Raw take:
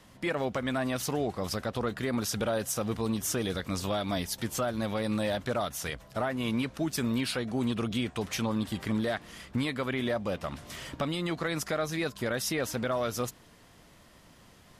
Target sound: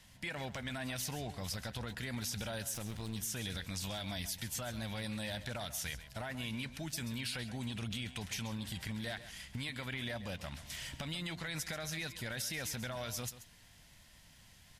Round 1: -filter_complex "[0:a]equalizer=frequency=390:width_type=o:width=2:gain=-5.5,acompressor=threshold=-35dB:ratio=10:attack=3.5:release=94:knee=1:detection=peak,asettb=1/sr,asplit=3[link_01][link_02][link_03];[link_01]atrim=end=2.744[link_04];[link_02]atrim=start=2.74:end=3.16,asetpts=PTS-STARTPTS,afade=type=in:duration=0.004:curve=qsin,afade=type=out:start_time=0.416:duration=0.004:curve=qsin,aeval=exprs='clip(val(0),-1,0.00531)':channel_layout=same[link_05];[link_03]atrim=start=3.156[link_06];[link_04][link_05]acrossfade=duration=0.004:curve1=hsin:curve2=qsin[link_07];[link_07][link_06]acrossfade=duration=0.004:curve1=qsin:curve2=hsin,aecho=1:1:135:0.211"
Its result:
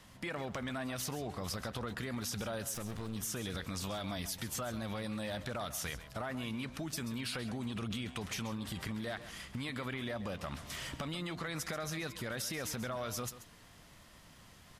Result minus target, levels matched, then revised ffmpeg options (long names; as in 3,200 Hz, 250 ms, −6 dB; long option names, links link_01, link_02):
500 Hz band +3.5 dB; 1,000 Hz band +3.5 dB
-filter_complex "[0:a]equalizer=frequency=390:width_type=o:width=2:gain=-16.5,acompressor=threshold=-35dB:ratio=10:attack=3.5:release=94:knee=1:detection=peak,equalizer=frequency=1200:width_type=o:width=0.29:gain=-12.5,asettb=1/sr,asplit=3[link_01][link_02][link_03];[link_01]atrim=end=2.744[link_04];[link_02]atrim=start=2.74:end=3.16,asetpts=PTS-STARTPTS,afade=type=in:duration=0.004:curve=qsin,afade=type=out:start_time=0.416:duration=0.004:curve=qsin,aeval=exprs='clip(val(0),-1,0.00531)':channel_layout=same[link_05];[link_03]atrim=start=3.156[link_06];[link_04][link_05]acrossfade=duration=0.004:curve1=hsin:curve2=qsin[link_07];[link_07][link_06]acrossfade=duration=0.004:curve1=qsin:curve2=hsin,aecho=1:1:135:0.211"